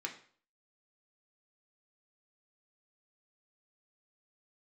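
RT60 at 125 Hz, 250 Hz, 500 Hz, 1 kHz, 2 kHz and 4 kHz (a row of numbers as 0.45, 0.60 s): 0.50, 0.45, 0.50, 0.50, 0.45, 0.45 s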